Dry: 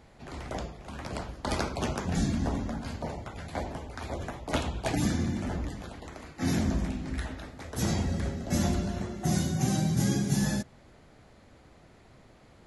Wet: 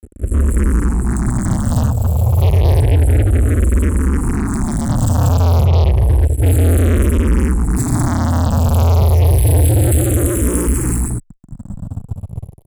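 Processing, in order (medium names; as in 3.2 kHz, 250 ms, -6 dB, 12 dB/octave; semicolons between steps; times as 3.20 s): 5.08–5.83 s: distance through air 180 m; delay 318 ms -5 dB; reverb removal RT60 1.3 s; 1.72–2.40 s: valve stage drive 43 dB, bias 0.35; FFT band-reject 120–7400 Hz; tone controls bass +10 dB, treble -1 dB; gated-style reverb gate 280 ms rising, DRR -5.5 dB; fuzz box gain 39 dB, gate -44 dBFS; barber-pole phaser -0.3 Hz; trim +5 dB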